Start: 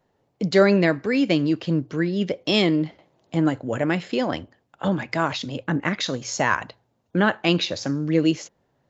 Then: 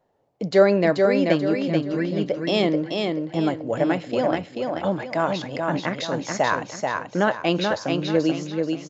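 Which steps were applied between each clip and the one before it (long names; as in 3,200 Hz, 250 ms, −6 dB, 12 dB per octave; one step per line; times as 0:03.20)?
parametric band 640 Hz +8.5 dB 1.4 octaves
on a send: repeating echo 434 ms, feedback 36%, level −4 dB
on the sum: level −5 dB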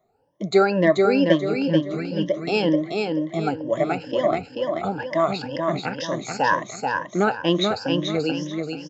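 rippled gain that drifts along the octave scale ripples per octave 1.2, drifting +2.1 Hz, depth 19 dB
level −3 dB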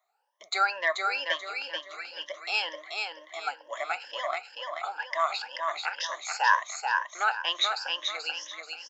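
high-pass filter 920 Hz 24 dB per octave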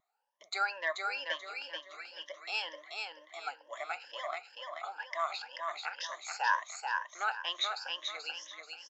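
mains-hum notches 60/120/180 Hz
tape wow and flutter 29 cents
level −7 dB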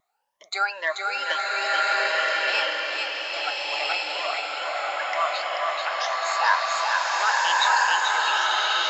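slow-attack reverb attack 1,370 ms, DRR −5.5 dB
level +7.5 dB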